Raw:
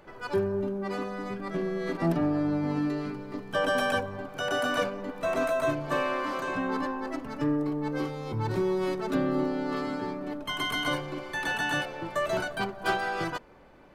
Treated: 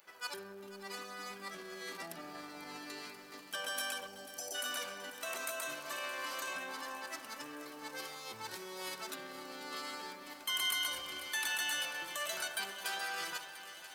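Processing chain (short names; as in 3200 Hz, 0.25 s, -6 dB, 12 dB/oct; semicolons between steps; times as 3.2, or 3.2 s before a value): 10.68–11.3 octaver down 2 oct, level +2 dB; on a send at -10 dB: reverb RT60 1.2 s, pre-delay 3 ms; on the sum: limiter -25 dBFS, peak gain reduction 10.5 dB; differentiator; in parallel at -5.5 dB: crossover distortion -59.5 dBFS; 4.07–4.54 on the sum: spectral delete 900–4300 Hz; lo-fi delay 0.492 s, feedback 80%, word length 11-bit, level -14 dB; gain +6 dB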